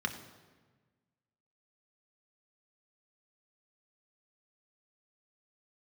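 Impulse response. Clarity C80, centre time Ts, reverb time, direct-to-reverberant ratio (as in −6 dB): 11.5 dB, 16 ms, 1.4 s, 4.0 dB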